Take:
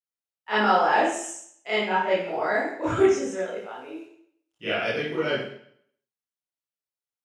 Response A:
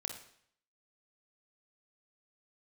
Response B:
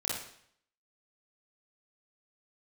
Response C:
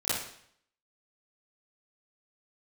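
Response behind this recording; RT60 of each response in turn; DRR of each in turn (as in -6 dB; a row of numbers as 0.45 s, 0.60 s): C; 0.65 s, 0.65 s, 0.65 s; 3.5 dB, -5.5 dB, -14.0 dB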